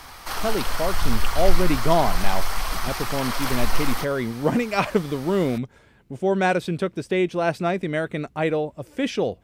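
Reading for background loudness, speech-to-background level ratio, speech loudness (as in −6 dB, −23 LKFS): −28.5 LKFS, 3.5 dB, −25.0 LKFS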